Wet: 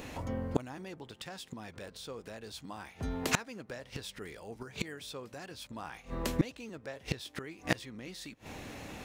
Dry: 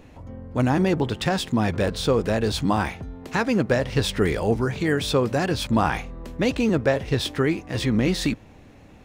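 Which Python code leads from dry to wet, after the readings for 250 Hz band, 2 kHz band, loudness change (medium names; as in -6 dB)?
-16.5 dB, -12.5 dB, -16.0 dB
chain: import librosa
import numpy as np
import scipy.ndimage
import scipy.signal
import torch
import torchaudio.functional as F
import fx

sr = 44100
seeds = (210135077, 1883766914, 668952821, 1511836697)

y = fx.tilt_eq(x, sr, slope=2.0)
y = fx.gate_flip(y, sr, shuts_db=-20.0, range_db=-28)
y = y * 10.0 ** (7.0 / 20.0)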